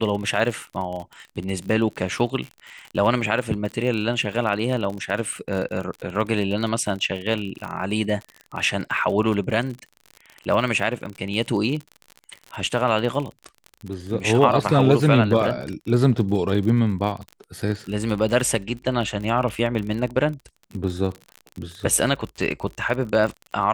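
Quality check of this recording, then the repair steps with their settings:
crackle 44/s -29 dBFS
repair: de-click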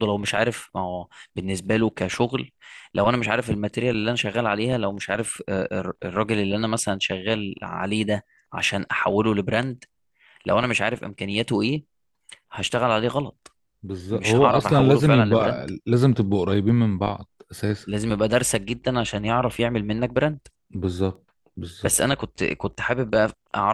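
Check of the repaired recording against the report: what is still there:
none

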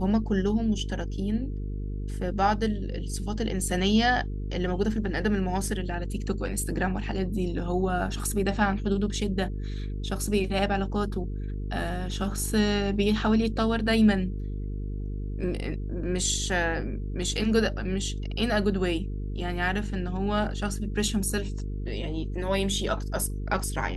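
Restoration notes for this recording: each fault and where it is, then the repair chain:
buzz 50 Hz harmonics 9 -32 dBFS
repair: de-hum 50 Hz, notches 9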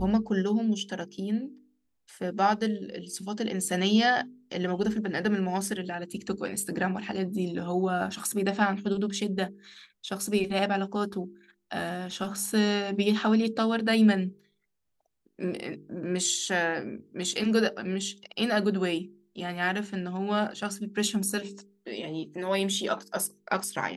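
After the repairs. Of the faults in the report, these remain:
none

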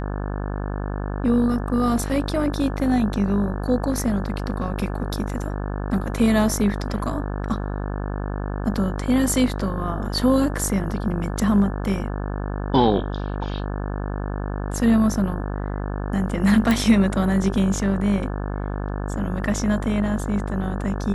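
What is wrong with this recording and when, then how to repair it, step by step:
buzz 50 Hz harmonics 35 -27 dBFS
16.71 pop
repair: de-click; de-hum 50 Hz, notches 35

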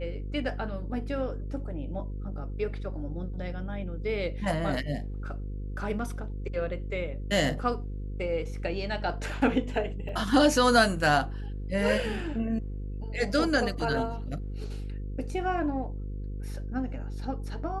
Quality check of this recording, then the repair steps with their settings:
buzz 50 Hz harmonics 10 -35 dBFS
10.09 gap 3.4 ms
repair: de-hum 50 Hz, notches 10; interpolate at 10.09, 3.4 ms

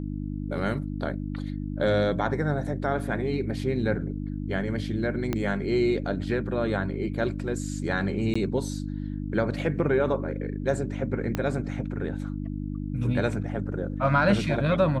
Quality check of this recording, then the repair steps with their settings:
hum 50 Hz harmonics 6 -32 dBFS
5.33 pop -13 dBFS
8.34–8.36 gap 15 ms
11.35 pop -13 dBFS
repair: de-click; de-hum 50 Hz, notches 6; interpolate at 8.34, 15 ms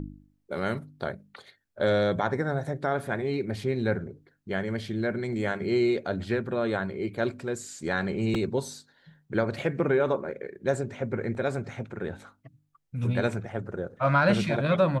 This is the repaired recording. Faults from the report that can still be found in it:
5.33 pop
11.35 pop

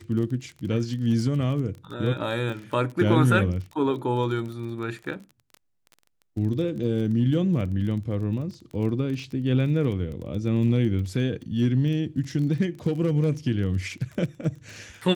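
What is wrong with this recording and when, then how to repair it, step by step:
crackle 25/s -33 dBFS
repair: de-click

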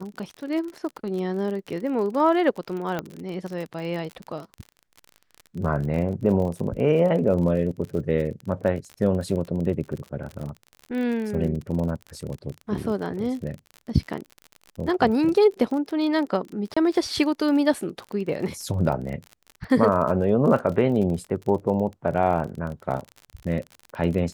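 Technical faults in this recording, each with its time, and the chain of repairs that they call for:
crackle 42/s -31 dBFS
2.99 pop -14 dBFS
16.74–16.77 gap 25 ms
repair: de-click; interpolate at 16.74, 25 ms

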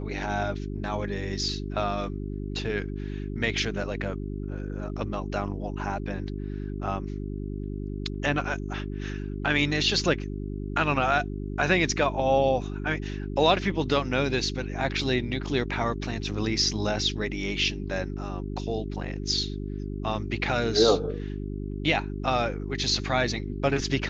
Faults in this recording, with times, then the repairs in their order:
hum 50 Hz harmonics 8 -33 dBFS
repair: de-hum 50 Hz, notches 8

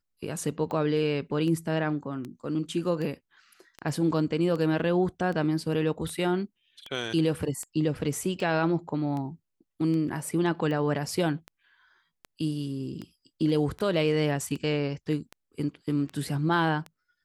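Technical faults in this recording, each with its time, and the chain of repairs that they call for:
tick 78 rpm -24 dBFS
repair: de-click

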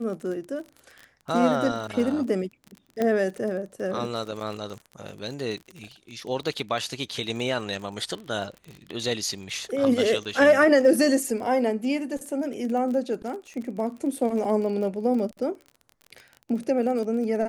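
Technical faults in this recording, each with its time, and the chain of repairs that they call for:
crackle 29/s -33 dBFS
3.02 pop -13 dBFS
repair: de-click

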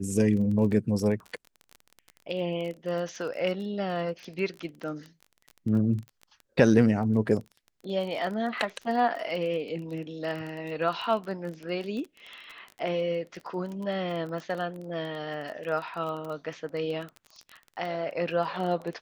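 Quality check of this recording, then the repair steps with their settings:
crackle 20/s -34 dBFS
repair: de-click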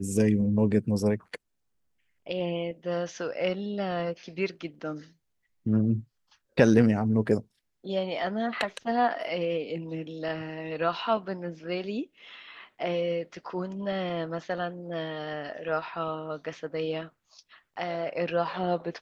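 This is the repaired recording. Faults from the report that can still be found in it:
none

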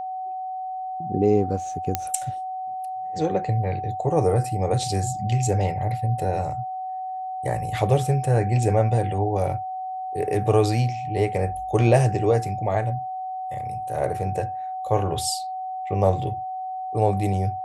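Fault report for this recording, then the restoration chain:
tone 750 Hz -28 dBFS
1.95 pop -6 dBFS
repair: de-click; notch 750 Hz, Q 30

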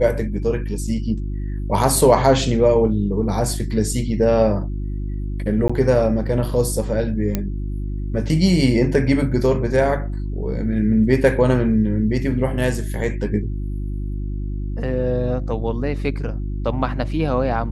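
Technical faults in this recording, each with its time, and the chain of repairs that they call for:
hum 50 Hz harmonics 7 -25 dBFS
5.68–5.7 gap 15 ms
7.35 pop -7 dBFS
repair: de-click; de-hum 50 Hz, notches 7; interpolate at 5.68, 15 ms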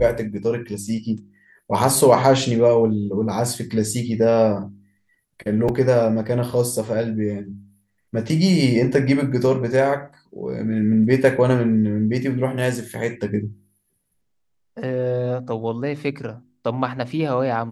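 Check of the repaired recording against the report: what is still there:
none

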